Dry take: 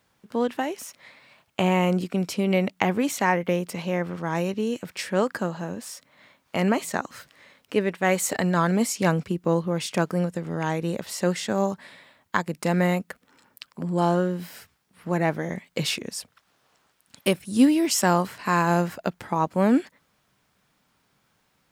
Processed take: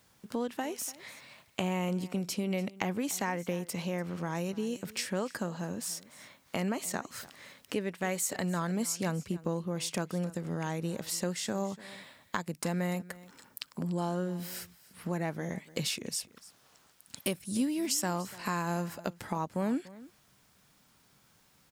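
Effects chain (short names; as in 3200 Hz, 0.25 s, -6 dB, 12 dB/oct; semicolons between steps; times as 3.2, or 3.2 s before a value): tone controls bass +3 dB, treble +7 dB; compressor 2.5:1, threshold -35 dBFS, peak gain reduction 15.5 dB; echo 0.292 s -19 dB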